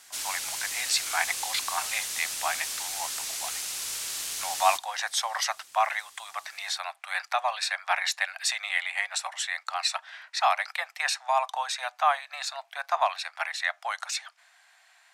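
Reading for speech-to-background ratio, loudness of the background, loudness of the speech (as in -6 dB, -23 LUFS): 2.0 dB, -31.0 LUFS, -29.0 LUFS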